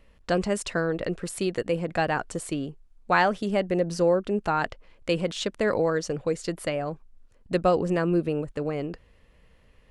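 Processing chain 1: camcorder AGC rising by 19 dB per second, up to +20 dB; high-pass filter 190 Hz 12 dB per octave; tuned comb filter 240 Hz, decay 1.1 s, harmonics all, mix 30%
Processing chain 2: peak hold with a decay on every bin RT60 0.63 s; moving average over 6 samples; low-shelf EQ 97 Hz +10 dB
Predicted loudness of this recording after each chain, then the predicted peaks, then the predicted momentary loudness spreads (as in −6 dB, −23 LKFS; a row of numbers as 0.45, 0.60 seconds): −28.5, −25.0 LKFS; −9.0, −6.0 dBFS; 8, 9 LU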